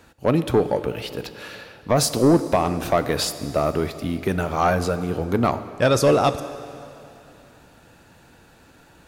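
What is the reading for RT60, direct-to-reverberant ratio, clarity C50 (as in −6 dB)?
2.8 s, 11.5 dB, 12.5 dB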